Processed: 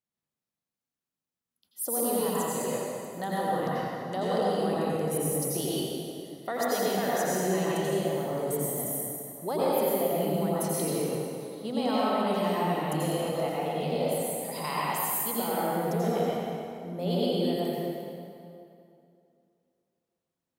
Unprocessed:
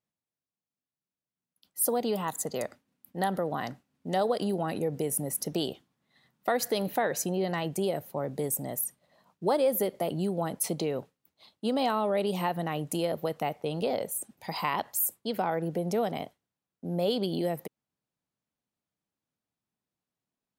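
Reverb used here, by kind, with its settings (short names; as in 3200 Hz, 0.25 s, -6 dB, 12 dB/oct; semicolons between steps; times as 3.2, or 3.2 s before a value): plate-style reverb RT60 2.6 s, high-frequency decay 0.75×, pre-delay 75 ms, DRR -7.5 dB; gain -6.5 dB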